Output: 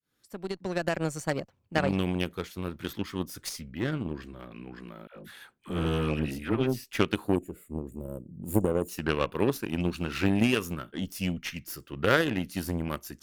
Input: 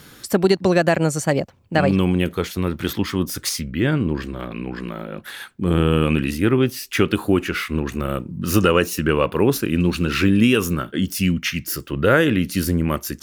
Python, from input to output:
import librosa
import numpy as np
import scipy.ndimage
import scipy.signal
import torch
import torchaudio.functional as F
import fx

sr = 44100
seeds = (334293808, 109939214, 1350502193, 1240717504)

y = fx.fade_in_head(x, sr, length_s=1.08)
y = fx.dispersion(y, sr, late='lows', ms=92.0, hz=610.0, at=(5.07, 6.84))
y = fx.spec_box(y, sr, start_s=7.36, length_s=1.53, low_hz=670.0, high_hz=6800.0, gain_db=-26)
y = fx.cheby_harmonics(y, sr, harmonics=(3, 5, 7, 8), levels_db=(-13, -29, -31, -35), full_scale_db=-3.0)
y = F.gain(torch.from_numpy(y), -4.0).numpy()